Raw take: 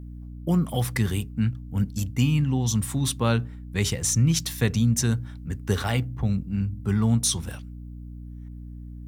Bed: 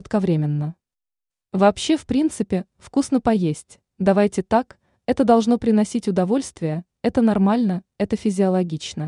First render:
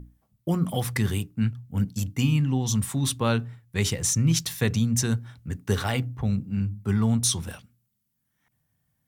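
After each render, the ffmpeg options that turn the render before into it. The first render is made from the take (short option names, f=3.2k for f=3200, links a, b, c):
-af "bandreject=f=60:t=h:w=6,bandreject=f=120:t=h:w=6,bandreject=f=180:t=h:w=6,bandreject=f=240:t=h:w=6,bandreject=f=300:t=h:w=6"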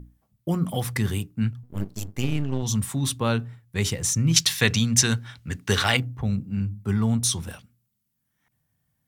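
-filter_complex "[0:a]asettb=1/sr,asplit=3[a][b][c];[a]atrim=end=1.634[d];[b]atrim=start=1.63:end=2.63,asetpts=PTS-STARTPTS,afade=t=in:d=0.004:c=qsin,afade=t=out:st=0.996:d=0.004:c=qsin,aeval=exprs='max(val(0),0)':c=same[e];[c]atrim=start=2.626[f];[d][e]acrossfade=d=0.004:c1=hsin:c2=qsin[g];[g][f]acrossfade=d=0.004:c1=qsin:c2=hsin,asettb=1/sr,asplit=3[h][i][j];[h]atrim=end=4.364[k];[i]atrim=start=4.36:end=5.97,asetpts=PTS-STARTPTS,afade=t=in:d=0.004:c=qsin,afade=t=out:st=1.606:d=0.004:c=qsin,equalizer=f=3.2k:w=0.35:g=11.5[l];[j]atrim=start=5.966[m];[k][l]acrossfade=d=0.004:c1=hsin:c2=qsin[n];[n][m]acrossfade=d=0.004:c1=qsin:c2=hsin"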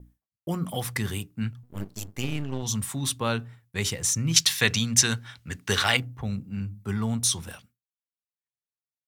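-af "agate=range=-33dB:threshold=-48dB:ratio=3:detection=peak,lowshelf=f=470:g=-6"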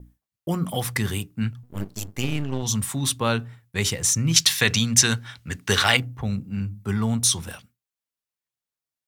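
-af "volume=4dB,alimiter=limit=-3dB:level=0:latency=1"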